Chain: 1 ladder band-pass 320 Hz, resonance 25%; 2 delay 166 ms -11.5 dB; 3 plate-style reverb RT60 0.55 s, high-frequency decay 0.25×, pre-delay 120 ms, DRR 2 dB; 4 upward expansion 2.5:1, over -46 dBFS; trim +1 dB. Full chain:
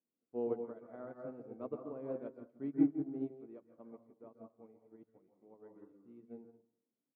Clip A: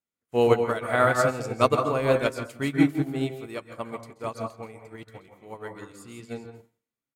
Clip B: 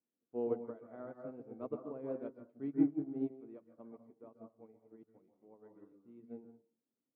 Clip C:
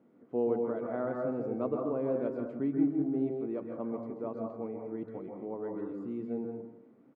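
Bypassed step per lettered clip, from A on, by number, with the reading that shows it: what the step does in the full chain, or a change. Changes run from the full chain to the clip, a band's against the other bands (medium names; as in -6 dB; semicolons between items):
1, 250 Hz band -12.0 dB; 2, momentary loudness spread change -1 LU; 4, 250 Hz band -4.0 dB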